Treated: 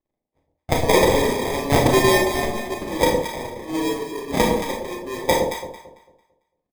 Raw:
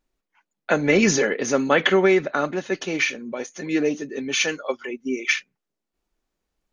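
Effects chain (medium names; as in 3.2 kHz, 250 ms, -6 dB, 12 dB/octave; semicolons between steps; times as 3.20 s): companding laws mixed up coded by A; high-pass 390 Hz 12 dB/octave; treble shelf 2.8 kHz +4.5 dB; comb 2.6 ms, depth 52%; in parallel at +2 dB: level held to a coarse grid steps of 17 dB; on the sum: sample-and-hold 31×; on a send: echo whose repeats swap between lows and highs 112 ms, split 840 Hz, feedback 54%, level -3 dB; on the sum: Schroeder reverb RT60 0.36 s, combs from 25 ms, DRR 1 dB; tape noise reduction on one side only decoder only; trim -6 dB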